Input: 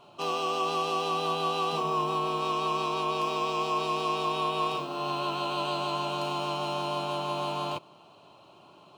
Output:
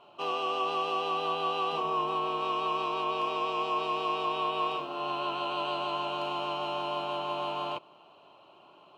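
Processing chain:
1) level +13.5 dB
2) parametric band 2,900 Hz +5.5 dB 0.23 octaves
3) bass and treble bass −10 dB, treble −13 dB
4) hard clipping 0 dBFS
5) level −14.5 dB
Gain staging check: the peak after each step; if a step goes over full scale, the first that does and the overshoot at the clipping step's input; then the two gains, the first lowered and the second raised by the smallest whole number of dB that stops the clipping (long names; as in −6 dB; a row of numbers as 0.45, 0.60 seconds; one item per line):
−6.0, −4.5, −5.0, −5.0, −19.5 dBFS
no step passes full scale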